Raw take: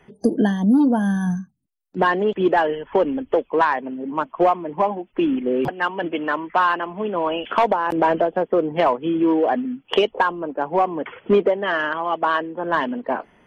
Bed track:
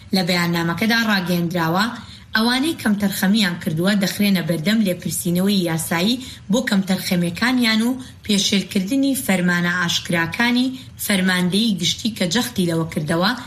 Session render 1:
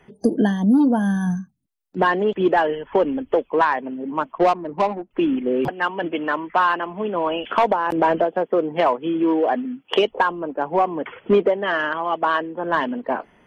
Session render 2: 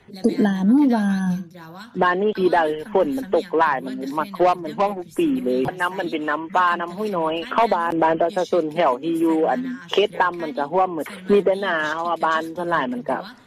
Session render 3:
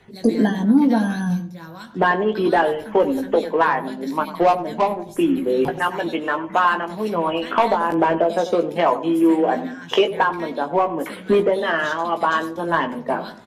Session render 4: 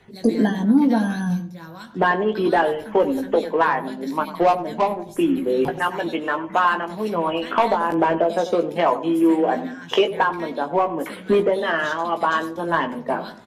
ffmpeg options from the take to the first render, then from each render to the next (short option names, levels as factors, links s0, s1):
-filter_complex "[0:a]asettb=1/sr,asplit=3[s0][s1][s2];[s0]atrim=end=4.384[s3];[s1]atrim=start=4.38:end=5.11,asetpts=PTS-STARTPTS,afade=t=in:d=0.004:c=qsin,afade=t=out:st=0.726:d=0.004:c=qsin,adynamicsmooth=sensitivity=1:basefreq=660[s4];[s2]atrim=start=5.106[s5];[s3][s4]acrossfade=d=0.004:c1=hsin:c2=qsin[s6];[s6][s5]acrossfade=d=0.004:c1=qsin:c2=hsin,asettb=1/sr,asplit=3[s7][s8][s9];[s7]atrim=end=8.244[s10];[s8]atrim=start=8.24:end=9.99,asetpts=PTS-STARTPTS,afade=t=in:d=0.004:c=qsin,afade=t=out:st=1.746:d=0.004:c=qsin,highpass=f=180:p=1[s11];[s9]atrim=start=9.986[s12];[s10][s11]acrossfade=d=0.004:c1=hsin:c2=qsin[s13];[s13][s12]acrossfade=d=0.004:c1=qsin:c2=hsin"
-filter_complex "[1:a]volume=0.0944[s0];[0:a][s0]amix=inputs=2:normalize=0"
-filter_complex "[0:a]asplit=2[s0][s1];[s1]adelay=18,volume=0.447[s2];[s0][s2]amix=inputs=2:normalize=0,asplit=2[s3][s4];[s4]adelay=94,lowpass=f=950:p=1,volume=0.282,asplit=2[s5][s6];[s6]adelay=94,lowpass=f=950:p=1,volume=0.42,asplit=2[s7][s8];[s8]adelay=94,lowpass=f=950:p=1,volume=0.42,asplit=2[s9][s10];[s10]adelay=94,lowpass=f=950:p=1,volume=0.42[s11];[s3][s5][s7][s9][s11]amix=inputs=5:normalize=0"
-af "volume=0.891"